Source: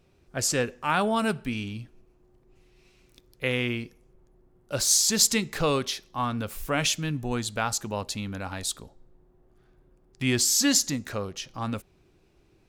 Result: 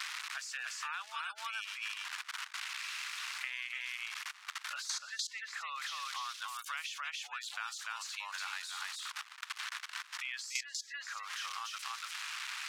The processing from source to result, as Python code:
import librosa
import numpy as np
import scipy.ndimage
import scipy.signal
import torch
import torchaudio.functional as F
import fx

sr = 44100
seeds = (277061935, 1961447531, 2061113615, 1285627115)

y = x + 0.5 * 10.0 ** (-20.0 / 20.0) * np.diff(np.sign(x), prepend=np.sign(x[:1]))
y = fx.spec_gate(y, sr, threshold_db=-25, keep='strong')
y = fx.mod_noise(y, sr, seeds[0], snr_db=14, at=(1.67, 3.5))
y = y + 10.0 ** (-4.0 / 20.0) * np.pad(y, (int(291 * sr / 1000.0), 0))[:len(y)]
y = fx.level_steps(y, sr, step_db=19)
y = scipy.signal.sosfilt(scipy.signal.butter(6, 1100.0, 'highpass', fs=sr, output='sos'), y)
y = fx.spacing_loss(y, sr, db_at_10k=24)
y = fx.band_squash(y, sr, depth_pct=100)
y = y * 10.0 ** (8.5 / 20.0)